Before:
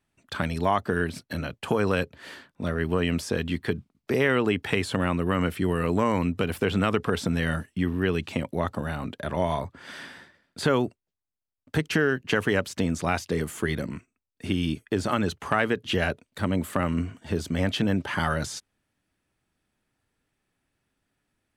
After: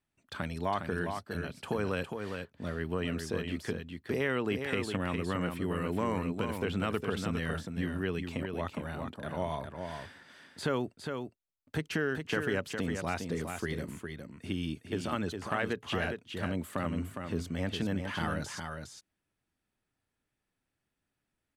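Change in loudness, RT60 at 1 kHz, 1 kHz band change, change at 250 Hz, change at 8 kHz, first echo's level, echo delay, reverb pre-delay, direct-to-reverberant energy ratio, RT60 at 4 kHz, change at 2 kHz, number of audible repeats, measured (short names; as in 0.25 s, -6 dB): -8.0 dB, none, -7.5 dB, -7.5 dB, -7.5 dB, -6.0 dB, 0.409 s, none, none, none, -7.5 dB, 1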